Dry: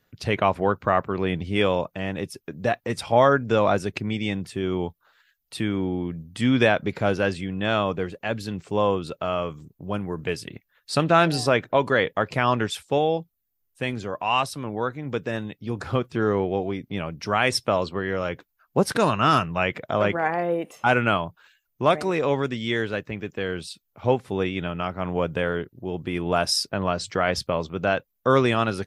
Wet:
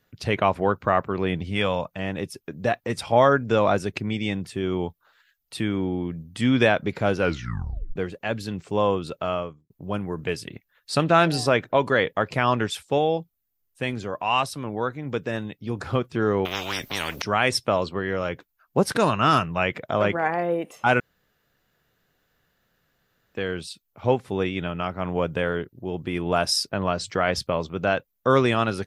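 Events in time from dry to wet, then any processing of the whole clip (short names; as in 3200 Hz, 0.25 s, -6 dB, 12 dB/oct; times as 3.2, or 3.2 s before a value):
1.5–1.99 bell 360 Hz -9.5 dB 0.68 oct
7.19 tape stop 0.77 s
9.29–9.7 studio fade out
16.45–17.22 spectral compressor 10:1
21–23.35 room tone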